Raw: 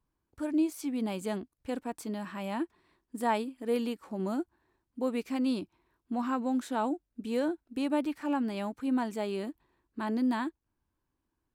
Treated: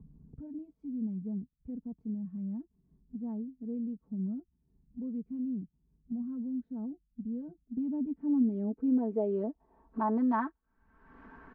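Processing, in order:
comb filter 4.5 ms, depth 93%
upward compression, threshold −38 dBFS
low-pass filter sweep 140 Hz → 1,600 Hz, 0:07.40–0:10.74
multiband upward and downward compressor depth 40%
level −2.5 dB

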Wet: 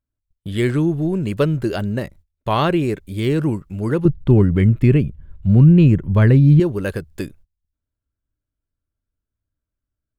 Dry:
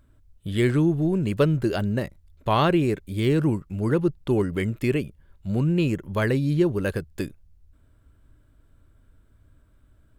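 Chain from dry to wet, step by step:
0:04.05–0:06.60: bass and treble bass +13 dB, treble −10 dB
noise gate −46 dBFS, range −28 dB
level +2.5 dB

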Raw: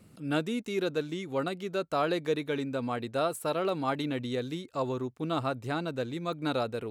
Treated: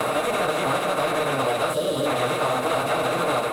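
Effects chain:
compressor on every frequency bin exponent 0.2
noise gate with hold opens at −17 dBFS
low shelf with overshoot 490 Hz −6.5 dB, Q 1.5
hum removal 78.42 Hz, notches 20
on a send at −3.5 dB: convolution reverb RT60 0.60 s, pre-delay 6 ms
on the sum: automatic gain control
time stretch by phase vocoder 0.51×
gain on a spectral selection 0:01.73–0:02.06, 640–2,800 Hz −14 dB
in parallel at −4.5 dB: hard clipping −23 dBFS, distortion −6 dB
on the sum: multiband upward and downward compressor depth 100%
level −6.5 dB

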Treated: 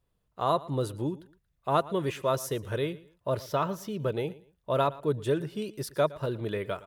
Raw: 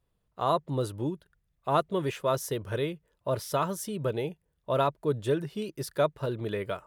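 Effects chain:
0:03.39–0:04.06: parametric band 9,400 Hz −14.5 dB 0.85 octaves
on a send: repeating echo 115 ms, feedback 27%, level −19.5 dB

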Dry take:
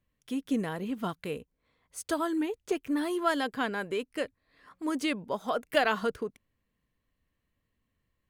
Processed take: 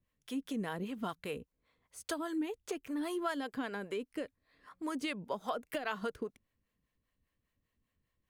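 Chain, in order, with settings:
downward compressor 12 to 1, threshold −29 dBFS, peak gain reduction 11 dB
two-band tremolo in antiphase 5 Hz, depth 70%, crossover 460 Hz

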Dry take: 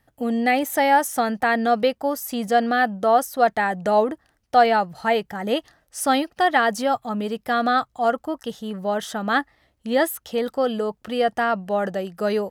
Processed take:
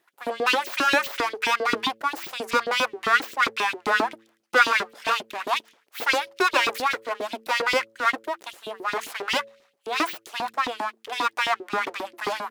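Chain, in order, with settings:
full-wave rectification
auto-filter high-pass saw up 7.5 Hz 270–4,000 Hz
hum removal 111.6 Hz, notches 5

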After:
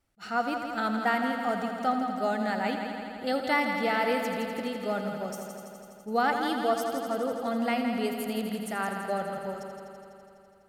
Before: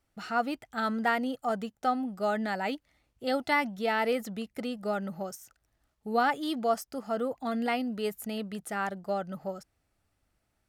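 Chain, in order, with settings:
pitch vibrato 0.85 Hz 7 cents
echo machine with several playback heads 83 ms, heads first and second, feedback 74%, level −10 dB
level that may rise only so fast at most 450 dB per second

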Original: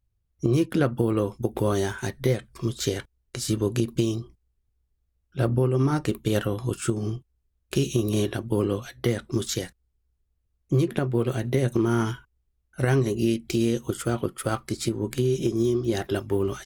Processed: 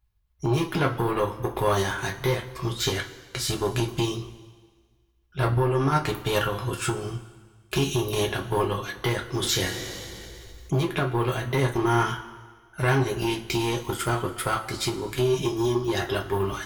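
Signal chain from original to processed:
in parallel at +0.5 dB: output level in coarse steps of 12 dB
on the sum: soft clipping −11.5 dBFS, distortion −16 dB
octave-band graphic EQ 125/250/500/1,000/8,000 Hz −6/−9/−5/+4/−7 dB
coupled-rooms reverb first 0.21 s, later 1.6 s, from −18 dB, DRR 0 dB
0:09.43–0:10.79: envelope flattener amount 50%

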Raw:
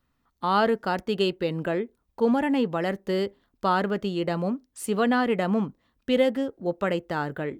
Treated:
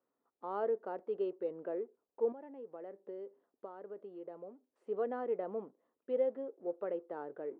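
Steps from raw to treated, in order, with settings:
mu-law and A-law mismatch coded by mu
0:02.32–0:04.87: downward compressor 5 to 1, threshold −31 dBFS, peak gain reduction 12 dB
four-pole ladder band-pass 520 Hz, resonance 45%
level −3 dB

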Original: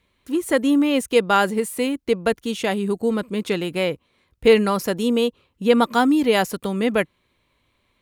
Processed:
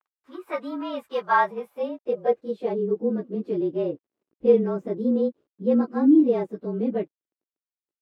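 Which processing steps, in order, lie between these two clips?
partials spread apart or drawn together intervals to 108%
bit reduction 10 bits
band-pass filter sweep 1,100 Hz → 330 Hz, 0:01.20–0:03.07
level +4.5 dB

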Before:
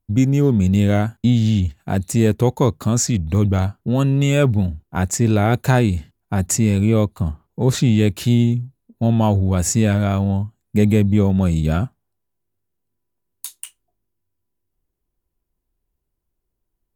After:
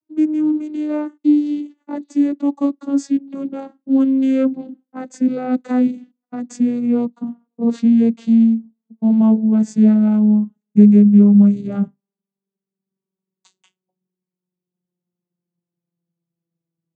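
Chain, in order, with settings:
vocoder with a gliding carrier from D#4, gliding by −11 semitones
low-shelf EQ 220 Hz +11.5 dB
level −2.5 dB

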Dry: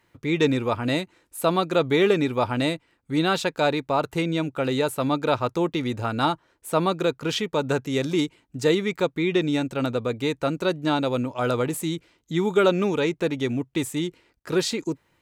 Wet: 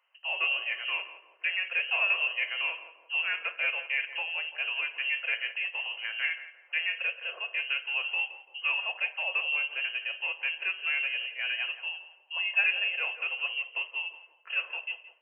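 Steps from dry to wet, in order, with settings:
voice inversion scrambler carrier 3,000 Hz
inverse Chebyshev high-pass filter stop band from 240 Hz, stop band 40 dB
on a send: feedback echo with a low-pass in the loop 170 ms, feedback 52%, low-pass 1,000 Hz, level −8.5 dB
on the sum: coupled-rooms reverb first 0.44 s, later 1.6 s, from −26 dB, DRR 8 dB
level −9 dB

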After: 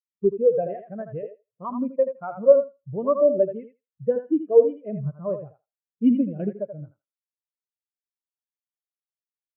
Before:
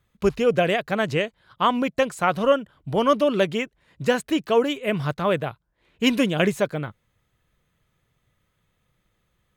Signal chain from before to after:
0:01.23–0:01.65: octave-band graphic EQ 125/500/1,000/4,000 Hz +4/+11/−11/−11 dB
in parallel at +2 dB: downward compressor, threshold −29 dBFS, peak gain reduction 15.5 dB
on the sum: high-frequency loss of the air 330 metres
on a send: feedback echo with a high-pass in the loop 81 ms, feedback 41%, high-pass 280 Hz, level −3 dB
on the sum: every bin expanded away from the loudest bin 2.5 to 1

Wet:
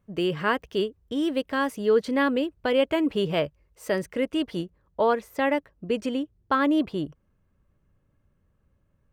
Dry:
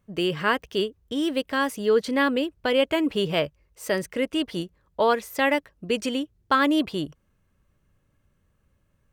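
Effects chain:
high-shelf EQ 2,100 Hz −6.5 dB, from 0:04.61 −11.5 dB

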